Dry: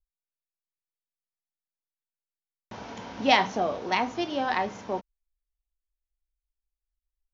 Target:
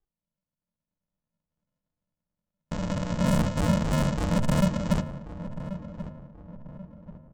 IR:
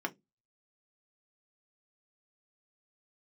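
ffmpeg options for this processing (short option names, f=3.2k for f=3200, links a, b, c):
-filter_complex "[0:a]lowpass=2.4k,tiltshelf=f=720:g=-7.5,dynaudnorm=f=230:g=13:m=12dB,aresample=16000,acrusher=samples=41:mix=1:aa=0.000001,aresample=44100,asoftclip=type=hard:threshold=-30dB,asplit=2[a][b];[b]adelay=1085,lowpass=f=1.2k:p=1,volume=-12dB,asplit=2[c][d];[d]adelay=1085,lowpass=f=1.2k:p=1,volume=0.42,asplit=2[e][f];[f]adelay=1085,lowpass=f=1.2k:p=1,volume=0.42,asplit=2[g][h];[h]adelay=1085,lowpass=f=1.2k:p=1,volume=0.42[i];[a][c][e][g][i]amix=inputs=5:normalize=0,asplit=2[j][k];[1:a]atrim=start_sample=2205,asetrate=23814,aresample=44100[l];[k][l]afir=irnorm=-1:irlink=0,volume=-10dB[m];[j][m]amix=inputs=2:normalize=0,volume=6dB"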